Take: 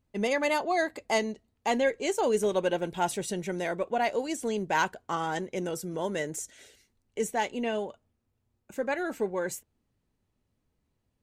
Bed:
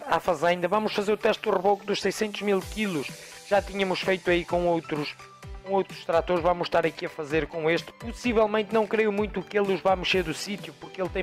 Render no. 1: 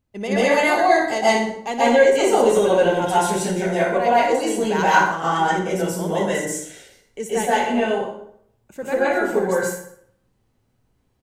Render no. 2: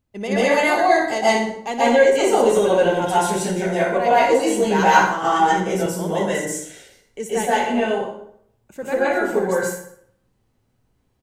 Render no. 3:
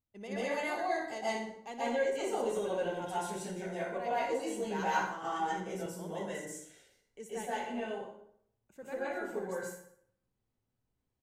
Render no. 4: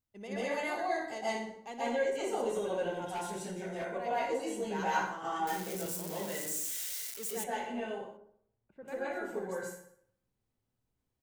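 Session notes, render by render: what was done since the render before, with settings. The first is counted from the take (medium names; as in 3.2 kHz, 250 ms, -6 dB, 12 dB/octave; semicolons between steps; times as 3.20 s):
on a send: feedback delay 61 ms, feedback 43%, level -11 dB; on the sum: plate-style reverb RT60 0.66 s, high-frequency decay 0.65×, pre-delay 115 ms, DRR -9.5 dB
4.09–5.86 s: doubling 15 ms -2 dB
trim -17.5 dB
3.13–3.85 s: hard clipper -33 dBFS; 5.47–7.44 s: zero-crossing glitches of -31 dBFS; 8.17–8.88 s: distance through air 420 m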